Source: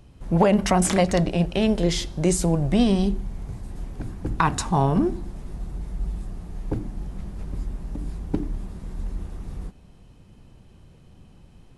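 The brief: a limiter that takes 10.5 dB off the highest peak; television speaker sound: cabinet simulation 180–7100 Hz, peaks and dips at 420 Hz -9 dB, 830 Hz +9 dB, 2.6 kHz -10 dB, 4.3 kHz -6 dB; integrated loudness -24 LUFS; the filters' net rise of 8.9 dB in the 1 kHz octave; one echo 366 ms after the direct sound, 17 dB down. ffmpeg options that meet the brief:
-af "equalizer=f=1000:t=o:g=5,alimiter=limit=0.224:level=0:latency=1,highpass=f=180:w=0.5412,highpass=f=180:w=1.3066,equalizer=f=420:t=q:w=4:g=-9,equalizer=f=830:t=q:w=4:g=9,equalizer=f=2600:t=q:w=4:g=-10,equalizer=f=4300:t=q:w=4:g=-6,lowpass=f=7100:w=0.5412,lowpass=f=7100:w=1.3066,aecho=1:1:366:0.141,volume=1.26"

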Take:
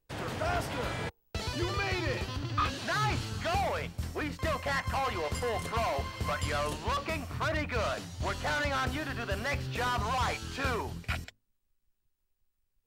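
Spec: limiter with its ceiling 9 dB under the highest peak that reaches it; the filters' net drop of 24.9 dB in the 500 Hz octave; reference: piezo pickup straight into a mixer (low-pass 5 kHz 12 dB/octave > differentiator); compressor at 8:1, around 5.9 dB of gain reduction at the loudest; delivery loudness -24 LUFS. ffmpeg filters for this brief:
-af "equalizer=f=500:t=o:g=-4,acompressor=threshold=0.0224:ratio=8,alimiter=level_in=2.51:limit=0.0631:level=0:latency=1,volume=0.398,lowpass=5000,aderivative,volume=28.2"

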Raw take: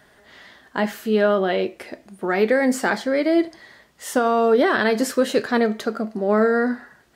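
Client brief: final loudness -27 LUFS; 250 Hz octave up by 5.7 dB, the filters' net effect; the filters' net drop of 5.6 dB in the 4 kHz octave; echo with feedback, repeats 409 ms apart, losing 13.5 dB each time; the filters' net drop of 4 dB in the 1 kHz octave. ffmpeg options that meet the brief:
-af "equalizer=f=250:t=o:g=7,equalizer=f=1000:t=o:g=-6.5,equalizer=f=4000:t=o:g=-7,aecho=1:1:409|818:0.211|0.0444,volume=0.376"

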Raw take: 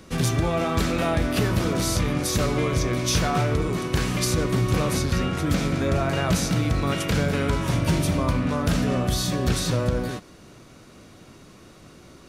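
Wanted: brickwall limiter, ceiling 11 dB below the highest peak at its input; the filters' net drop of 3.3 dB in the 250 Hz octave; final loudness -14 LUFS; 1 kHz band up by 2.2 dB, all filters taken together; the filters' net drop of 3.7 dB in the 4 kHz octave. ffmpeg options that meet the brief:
-af "equalizer=f=250:t=o:g=-5,equalizer=f=1000:t=o:g=3.5,equalizer=f=4000:t=o:g=-5,volume=7.08,alimiter=limit=0.531:level=0:latency=1"

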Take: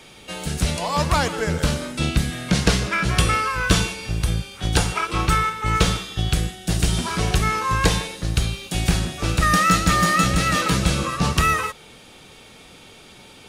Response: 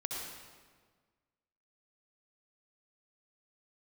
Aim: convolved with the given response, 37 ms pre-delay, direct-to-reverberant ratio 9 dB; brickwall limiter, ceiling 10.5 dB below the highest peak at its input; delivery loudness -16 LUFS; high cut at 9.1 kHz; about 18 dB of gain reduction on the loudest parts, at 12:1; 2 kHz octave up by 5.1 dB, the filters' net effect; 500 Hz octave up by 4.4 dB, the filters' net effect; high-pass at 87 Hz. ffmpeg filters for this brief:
-filter_complex "[0:a]highpass=87,lowpass=9100,equalizer=f=500:t=o:g=5,equalizer=f=2000:t=o:g=6,acompressor=threshold=0.0316:ratio=12,alimiter=level_in=1.19:limit=0.0631:level=0:latency=1,volume=0.841,asplit=2[s0][s1];[1:a]atrim=start_sample=2205,adelay=37[s2];[s1][s2]afir=irnorm=-1:irlink=0,volume=0.282[s3];[s0][s3]amix=inputs=2:normalize=0,volume=8.91"

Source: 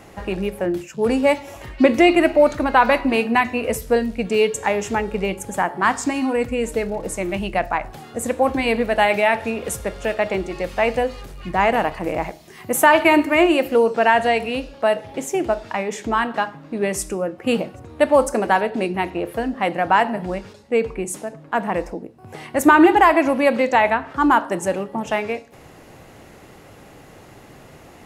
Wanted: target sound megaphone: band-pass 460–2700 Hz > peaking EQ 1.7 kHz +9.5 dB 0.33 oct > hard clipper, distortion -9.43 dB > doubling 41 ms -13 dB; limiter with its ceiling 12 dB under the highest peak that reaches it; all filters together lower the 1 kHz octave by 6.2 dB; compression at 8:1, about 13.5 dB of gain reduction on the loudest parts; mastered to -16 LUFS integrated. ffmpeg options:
-filter_complex "[0:a]equalizer=f=1000:t=o:g=-8,acompressor=threshold=0.0708:ratio=8,alimiter=limit=0.0708:level=0:latency=1,highpass=460,lowpass=2700,equalizer=f=1700:t=o:w=0.33:g=9.5,asoftclip=type=hard:threshold=0.0237,asplit=2[s0][s1];[s1]adelay=41,volume=0.224[s2];[s0][s2]amix=inputs=2:normalize=0,volume=11.9"

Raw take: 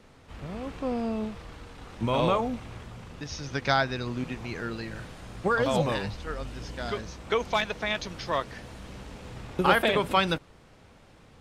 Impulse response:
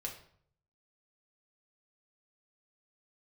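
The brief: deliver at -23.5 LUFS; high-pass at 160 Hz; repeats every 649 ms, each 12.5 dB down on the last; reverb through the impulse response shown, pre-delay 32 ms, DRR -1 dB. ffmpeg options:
-filter_complex "[0:a]highpass=160,aecho=1:1:649|1298|1947:0.237|0.0569|0.0137,asplit=2[s0][s1];[1:a]atrim=start_sample=2205,adelay=32[s2];[s1][s2]afir=irnorm=-1:irlink=0,volume=1.19[s3];[s0][s3]amix=inputs=2:normalize=0,volume=1.26"

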